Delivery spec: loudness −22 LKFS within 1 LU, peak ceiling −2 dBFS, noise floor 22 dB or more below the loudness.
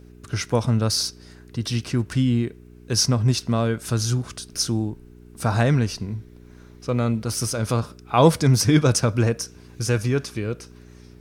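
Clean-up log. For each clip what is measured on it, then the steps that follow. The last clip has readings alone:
mains hum 60 Hz; hum harmonics up to 420 Hz; level of the hum −46 dBFS; integrated loudness −22.5 LKFS; sample peak −1.5 dBFS; target loudness −22.0 LKFS
→ hum removal 60 Hz, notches 7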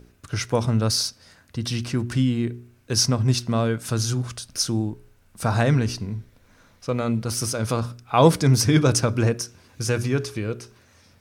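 mains hum none found; integrated loudness −23.0 LKFS; sample peak −2.0 dBFS; target loudness −22.0 LKFS
→ level +1 dB
brickwall limiter −2 dBFS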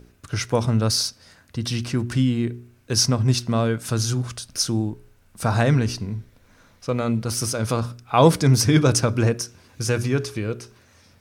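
integrated loudness −22.0 LKFS; sample peak −2.0 dBFS; background noise floor −56 dBFS

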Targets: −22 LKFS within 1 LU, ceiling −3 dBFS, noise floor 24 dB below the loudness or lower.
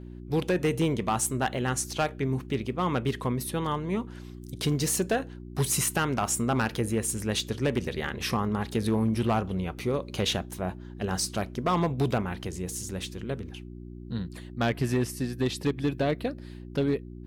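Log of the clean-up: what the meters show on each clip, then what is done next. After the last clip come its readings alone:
share of clipped samples 0.9%; peaks flattened at −19.0 dBFS; mains hum 60 Hz; hum harmonics up to 360 Hz; level of the hum −40 dBFS; integrated loudness −29.0 LKFS; sample peak −19.0 dBFS; target loudness −22.0 LKFS
→ clipped peaks rebuilt −19 dBFS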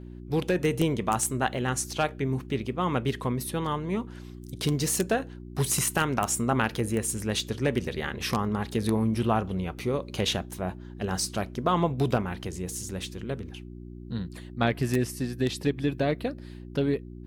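share of clipped samples 0.0%; mains hum 60 Hz; hum harmonics up to 360 Hz; level of the hum −39 dBFS
→ hum removal 60 Hz, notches 6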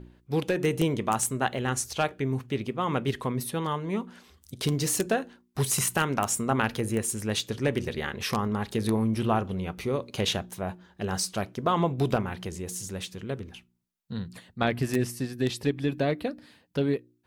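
mains hum none found; integrated loudness −29.0 LKFS; sample peak −9.0 dBFS; target loudness −22.0 LKFS
→ level +7 dB
brickwall limiter −3 dBFS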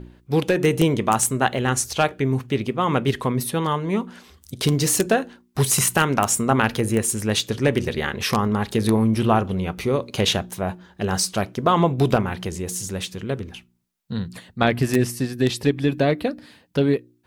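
integrated loudness −22.0 LKFS; sample peak −3.0 dBFS; background noise floor −60 dBFS

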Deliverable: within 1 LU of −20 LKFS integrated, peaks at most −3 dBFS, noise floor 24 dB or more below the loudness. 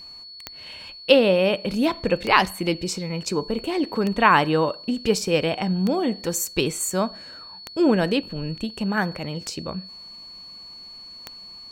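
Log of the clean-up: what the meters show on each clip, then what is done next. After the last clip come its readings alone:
number of clicks 7; interfering tone 4,400 Hz; level of the tone −39 dBFS; integrated loudness −22.5 LKFS; sample peak −1.0 dBFS; target loudness −20.0 LKFS
→ click removal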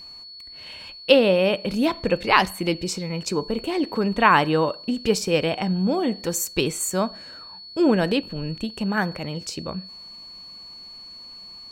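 number of clicks 0; interfering tone 4,400 Hz; level of the tone −39 dBFS
→ notch filter 4,400 Hz, Q 30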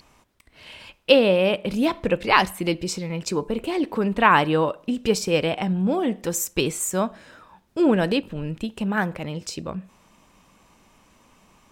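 interfering tone none found; integrated loudness −22.5 LKFS; sample peak −1.0 dBFS; target loudness −20.0 LKFS
→ level +2.5 dB
brickwall limiter −3 dBFS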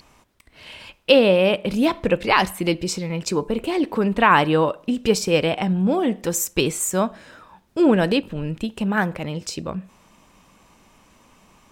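integrated loudness −20.5 LKFS; sample peak −3.0 dBFS; background noise floor −56 dBFS

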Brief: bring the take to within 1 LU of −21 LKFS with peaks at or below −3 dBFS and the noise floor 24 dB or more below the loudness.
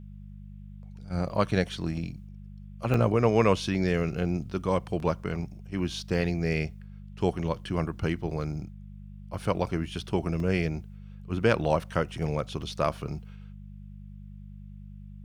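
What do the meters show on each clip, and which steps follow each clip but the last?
number of dropouts 4; longest dropout 1.7 ms; mains hum 50 Hz; hum harmonics up to 200 Hz; level of the hum −41 dBFS; integrated loudness −29.0 LKFS; sample peak −8.5 dBFS; target loudness −21.0 LKFS
→ repair the gap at 0:02.94/0:05.00/0:10.40/0:12.62, 1.7 ms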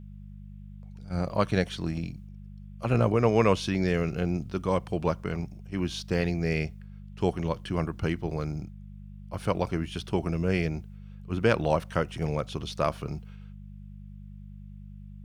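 number of dropouts 0; mains hum 50 Hz; hum harmonics up to 200 Hz; level of the hum −41 dBFS
→ hum removal 50 Hz, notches 4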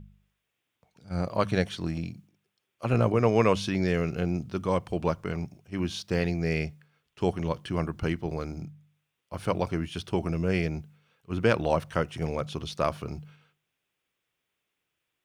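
mains hum none found; integrated loudness −29.0 LKFS; sample peak −9.0 dBFS; target loudness −21.0 LKFS
→ level +8 dB
brickwall limiter −3 dBFS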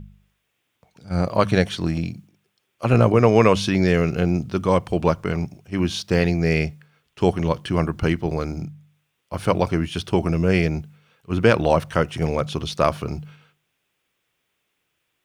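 integrated loudness −21.5 LKFS; sample peak −3.0 dBFS; background noise floor −74 dBFS

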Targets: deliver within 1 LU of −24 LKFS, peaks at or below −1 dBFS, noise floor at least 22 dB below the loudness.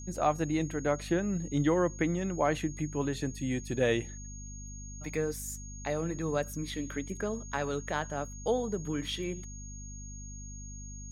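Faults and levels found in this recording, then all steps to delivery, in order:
mains hum 50 Hz; hum harmonics up to 250 Hz; level of the hum −42 dBFS; interfering tone 6,600 Hz; level of the tone −47 dBFS; integrated loudness −32.5 LKFS; sample peak −14.5 dBFS; target loudness −24.0 LKFS
→ mains-hum notches 50/100/150/200/250 Hz
notch filter 6,600 Hz, Q 30
level +8.5 dB

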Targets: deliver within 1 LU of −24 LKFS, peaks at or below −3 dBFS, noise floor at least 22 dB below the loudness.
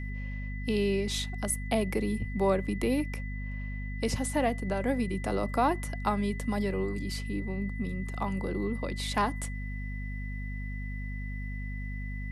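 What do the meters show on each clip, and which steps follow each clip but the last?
mains hum 50 Hz; hum harmonics up to 250 Hz; level of the hum −33 dBFS; interfering tone 2,000 Hz; level of the tone −44 dBFS; integrated loudness −32.0 LKFS; sample peak −14.5 dBFS; target loudness −24.0 LKFS
→ mains-hum notches 50/100/150/200/250 Hz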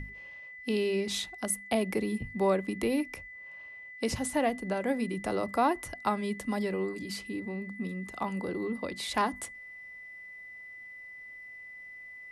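mains hum none found; interfering tone 2,000 Hz; level of the tone −44 dBFS
→ notch filter 2,000 Hz, Q 30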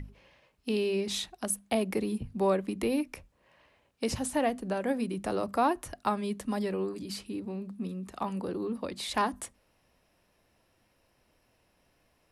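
interfering tone none found; integrated loudness −32.0 LKFS; sample peak −15.0 dBFS; target loudness −24.0 LKFS
→ level +8 dB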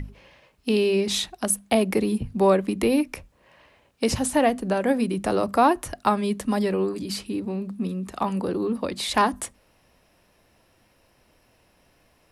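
integrated loudness −24.0 LKFS; sample peak −7.0 dBFS; background noise floor −63 dBFS

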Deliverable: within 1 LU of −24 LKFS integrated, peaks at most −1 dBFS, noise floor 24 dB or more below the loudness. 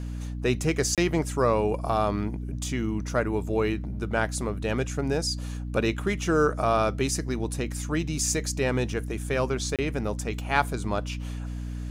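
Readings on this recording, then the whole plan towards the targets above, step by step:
number of dropouts 2; longest dropout 27 ms; mains hum 60 Hz; hum harmonics up to 300 Hz; level of the hum −31 dBFS; integrated loudness −27.5 LKFS; sample peak −8.0 dBFS; target loudness −24.0 LKFS
→ repair the gap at 0:00.95/0:09.76, 27 ms
hum removal 60 Hz, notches 5
level +3.5 dB

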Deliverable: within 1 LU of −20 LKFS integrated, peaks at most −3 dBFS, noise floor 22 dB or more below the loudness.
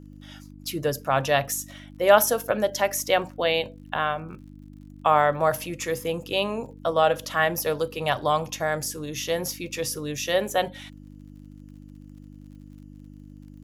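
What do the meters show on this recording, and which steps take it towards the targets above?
crackle rate 46 per second; mains hum 50 Hz; hum harmonics up to 300 Hz; level of the hum −42 dBFS; integrated loudness −25.0 LKFS; sample peak −3.0 dBFS; target loudness −20.0 LKFS
→ click removal
hum removal 50 Hz, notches 6
level +5 dB
brickwall limiter −3 dBFS

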